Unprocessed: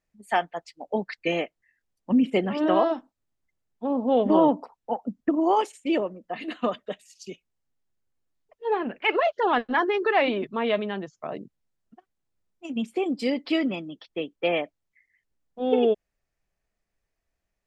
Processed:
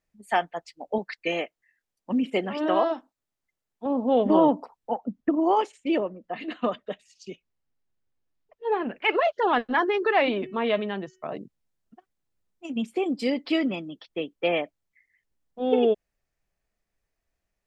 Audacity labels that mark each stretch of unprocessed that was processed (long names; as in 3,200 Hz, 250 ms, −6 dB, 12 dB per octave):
0.980000	3.860000	low-shelf EQ 240 Hz −9.5 dB
4.980000	8.810000	high-frequency loss of the air 80 metres
10.250000	11.370000	hum removal 373 Hz, notches 8